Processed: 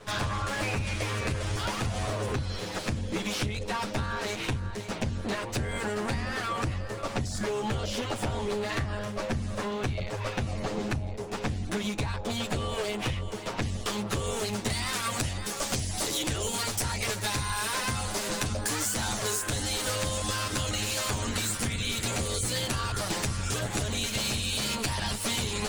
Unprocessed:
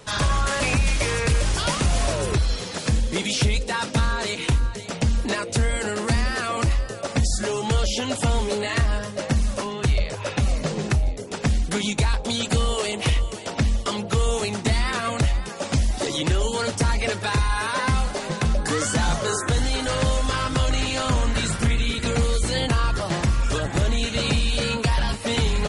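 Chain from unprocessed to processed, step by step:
lower of the sound and its delayed copy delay 9.5 ms
high-shelf EQ 4,500 Hz −8.5 dB, from 0:13.62 +2 dB, from 0:14.70 +11 dB
downward compressor, threshold −27 dBFS, peak gain reduction 10 dB

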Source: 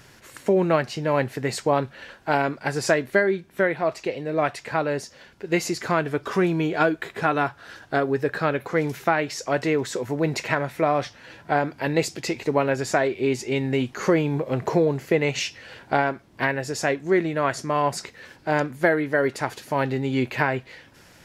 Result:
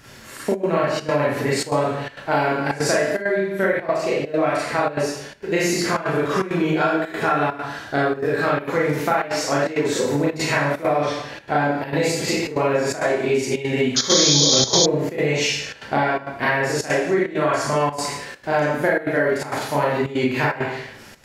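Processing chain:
four-comb reverb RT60 0.67 s, combs from 28 ms, DRR −8 dB
downward compressor 6 to 1, threshold −16 dBFS, peak gain reduction 11.5 dB
sound drawn into the spectrogram noise, 0:13.96–0:14.86, 3,100–7,000 Hz −17 dBFS
gate pattern "xxxxxx.xxxx." 166 BPM −12 dB

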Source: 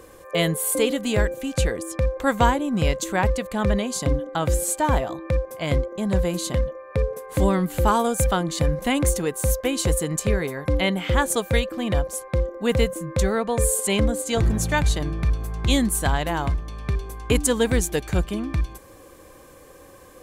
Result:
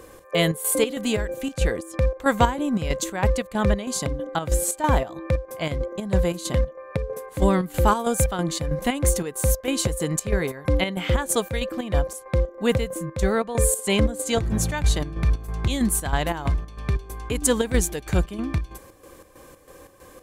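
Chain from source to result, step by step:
square-wave tremolo 3.1 Hz, depth 60%, duty 60%
level +1 dB

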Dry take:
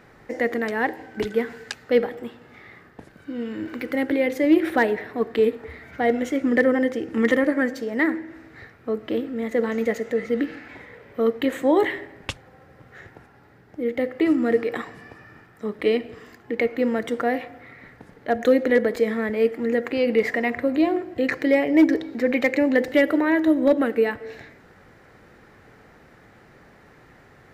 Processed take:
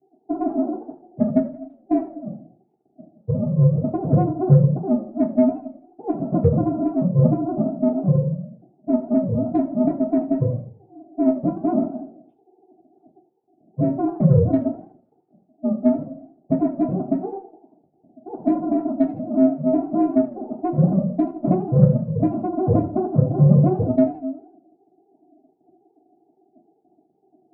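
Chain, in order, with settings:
three sine waves on the formant tracks
downward compressor 12 to 1, threshold −27 dBFS, peak gain reduction 20 dB
elliptic low-pass filter 530 Hz, stop band 40 dB
ring modulation 190 Hz
harmonic generator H 6 −23 dB, 8 −35 dB, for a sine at −20 dBFS
convolution reverb RT60 0.30 s, pre-delay 3 ms, DRR −9.5 dB
feedback echo with a swinging delay time 82 ms, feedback 41%, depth 214 cents, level −16 dB
level −6 dB

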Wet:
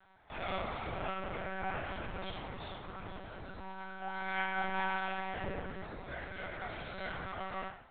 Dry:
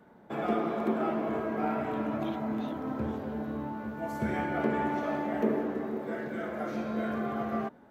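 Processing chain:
first difference
feedback delay network reverb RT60 0.65 s, low-frequency decay 1×, high-frequency decay 1×, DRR −0.5 dB
one-pitch LPC vocoder at 8 kHz 190 Hz
level +10 dB

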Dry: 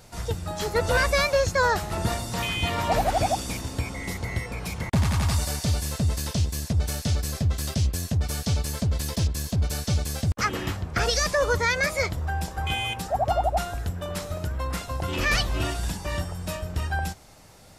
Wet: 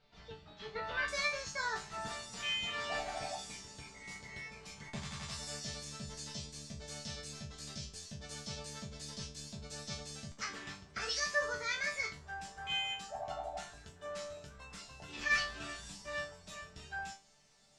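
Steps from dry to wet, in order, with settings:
resonators tuned to a chord D3 sus4, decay 0.29 s
dynamic equaliser 1,600 Hz, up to +5 dB, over −52 dBFS, Q 0.94
low-pass filter 3,800 Hz 24 dB per octave, from 0:01.08 7,400 Hz
high-shelf EQ 2,500 Hz +11 dB
level −5 dB

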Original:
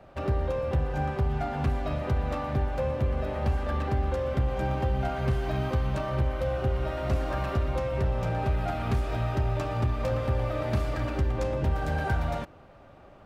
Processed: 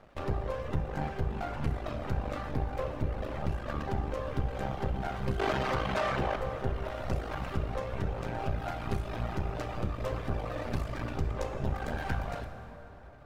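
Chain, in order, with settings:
half-wave rectification
0:05.39–0:06.36: mid-hump overdrive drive 23 dB, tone 3,100 Hz, clips at −18 dBFS
reverb reduction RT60 1.1 s
dense smooth reverb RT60 3.5 s, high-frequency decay 0.65×, DRR 6.5 dB

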